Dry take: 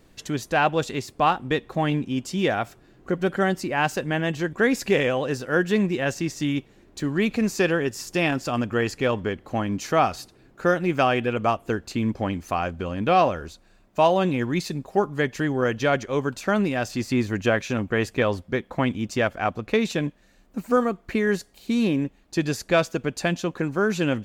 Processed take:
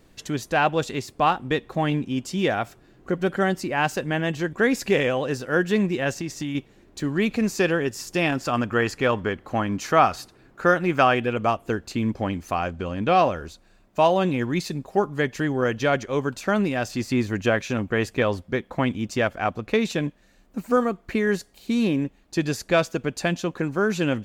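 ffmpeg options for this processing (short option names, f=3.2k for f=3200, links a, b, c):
-filter_complex "[0:a]asettb=1/sr,asplit=3[a][b][c];[a]atrim=end=6.114[d];[b]atrim=start=6.11:end=6.55,asetpts=PTS-STARTPTS,afade=t=in:d=0.004:c=qsin,afade=t=out:st=0.436:d=0.004:c=qsin,acompressor=threshold=-25dB:ratio=4:attack=3.2:release=140:knee=1:detection=peak[e];[c]atrim=start=6.546[f];[d][e]acrossfade=d=0.004:c1=hsin:c2=qsin[g];[g][f]acrossfade=d=0.004:c1=qsin:c2=hsin,asettb=1/sr,asplit=3[h][i][j];[h]atrim=end=8.404[k];[i]atrim=start=8.4:end=11.15,asetpts=PTS-STARTPTS,afade=t=in:d=0.004:c=qsin,afade=t=out:st=2.746:d=0.004:c=qsin,equalizer=f=1.3k:w=1:g=5[l];[j]atrim=start=11.146[m];[k][l]acrossfade=d=0.004:c1=hsin:c2=qsin[n];[n][m]acrossfade=d=0.004:c1=qsin:c2=hsin,asettb=1/sr,asplit=3[o][p][q];[o]atrim=end=12.684[r];[p]atrim=start=12.68:end=13.17,asetpts=PTS-STARTPTS,afade=t=in:d=0.004:c=qsin,afade=t=out:st=0.486:d=0.004:c=qsin,lowpass=f=9.9k:w=0.5412,lowpass=f=9.9k:w=1.3066[s];[q]atrim=start=13.166[t];[r][s]acrossfade=d=0.004:c1=hsin:c2=qsin[u];[u][t]acrossfade=d=0.004:c1=qsin:c2=hsin"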